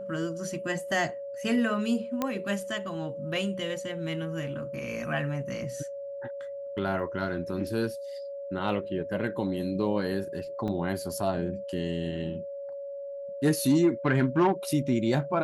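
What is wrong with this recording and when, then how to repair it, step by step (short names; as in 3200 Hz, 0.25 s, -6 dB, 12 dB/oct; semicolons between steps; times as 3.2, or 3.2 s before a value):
tone 560 Hz -35 dBFS
2.22 pop -14 dBFS
10.68 gap 2.8 ms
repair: de-click; notch 560 Hz, Q 30; interpolate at 10.68, 2.8 ms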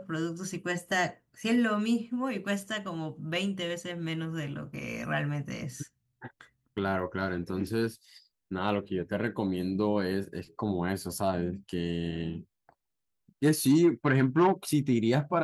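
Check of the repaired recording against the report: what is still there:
none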